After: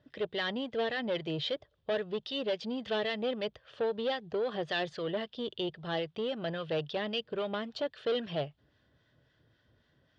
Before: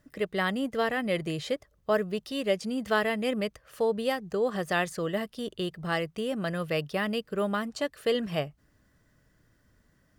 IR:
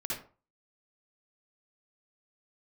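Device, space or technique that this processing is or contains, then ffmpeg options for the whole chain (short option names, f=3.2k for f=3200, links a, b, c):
guitar amplifier with harmonic tremolo: -filter_complex "[0:a]acrossover=split=960[a][b];[a]aeval=exprs='val(0)*(1-0.5/2+0.5/2*cos(2*PI*3.7*n/s))':c=same[c];[b]aeval=exprs='val(0)*(1-0.5/2-0.5/2*cos(2*PI*3.7*n/s))':c=same[d];[c][d]amix=inputs=2:normalize=0,asoftclip=type=tanh:threshold=-28dB,highpass=92,equalizer=f=190:t=q:w=4:g=-9,equalizer=f=280:t=q:w=4:g=-4,equalizer=f=1.2k:t=q:w=4:g=-6,equalizer=f=2.1k:t=q:w=4:g=-5,equalizer=f=3.4k:t=q:w=4:g=9,lowpass=f=4.4k:w=0.5412,lowpass=f=4.4k:w=1.3066,volume=2.5dB"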